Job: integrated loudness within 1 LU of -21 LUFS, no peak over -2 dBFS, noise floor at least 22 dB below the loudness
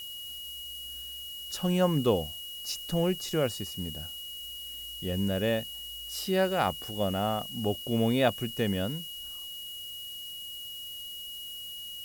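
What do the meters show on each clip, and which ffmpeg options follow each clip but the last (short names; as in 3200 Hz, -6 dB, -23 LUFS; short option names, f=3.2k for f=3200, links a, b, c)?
steady tone 2900 Hz; tone level -39 dBFS; noise floor -41 dBFS; noise floor target -54 dBFS; loudness -31.5 LUFS; peak -12.0 dBFS; loudness target -21.0 LUFS
-> -af "bandreject=f=2.9k:w=30"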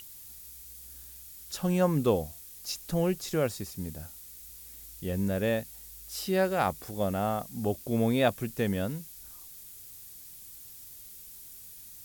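steady tone none; noise floor -48 dBFS; noise floor target -52 dBFS
-> -af "afftdn=nr=6:nf=-48"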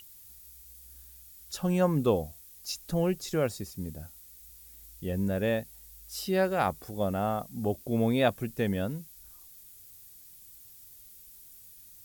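noise floor -52 dBFS; noise floor target -53 dBFS
-> -af "afftdn=nr=6:nf=-52"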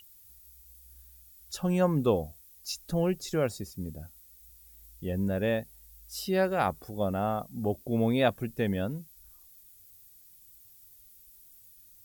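noise floor -56 dBFS; loudness -30.5 LUFS; peak -12.5 dBFS; loudness target -21.0 LUFS
-> -af "volume=9.5dB"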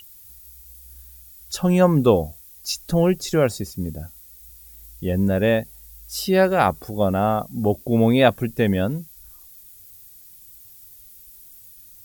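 loudness -21.0 LUFS; peak -3.0 dBFS; noise floor -47 dBFS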